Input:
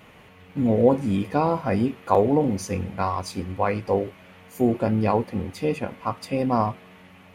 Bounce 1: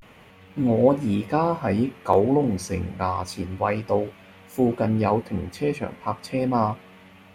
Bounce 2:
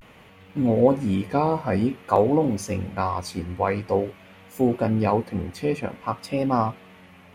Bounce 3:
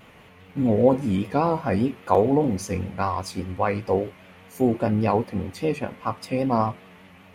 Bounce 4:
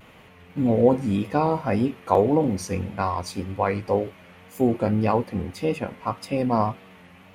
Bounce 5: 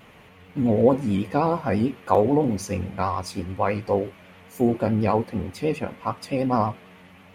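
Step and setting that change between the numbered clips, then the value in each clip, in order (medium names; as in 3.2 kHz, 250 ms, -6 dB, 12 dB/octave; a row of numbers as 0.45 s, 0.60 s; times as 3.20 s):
vibrato, rate: 0.3 Hz, 0.5 Hz, 5 Hz, 1.8 Hz, 9.2 Hz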